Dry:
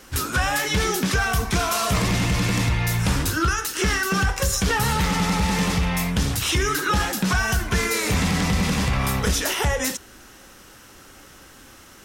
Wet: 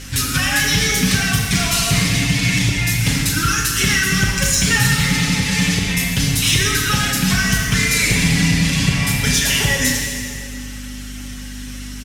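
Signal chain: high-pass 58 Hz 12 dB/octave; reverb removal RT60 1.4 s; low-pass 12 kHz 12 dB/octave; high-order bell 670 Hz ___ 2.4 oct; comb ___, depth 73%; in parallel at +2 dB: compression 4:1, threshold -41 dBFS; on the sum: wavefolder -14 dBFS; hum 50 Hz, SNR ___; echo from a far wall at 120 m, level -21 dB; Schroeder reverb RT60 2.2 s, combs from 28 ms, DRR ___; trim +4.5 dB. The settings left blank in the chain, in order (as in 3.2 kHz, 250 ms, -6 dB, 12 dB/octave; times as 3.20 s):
-12.5 dB, 7.2 ms, 15 dB, 0 dB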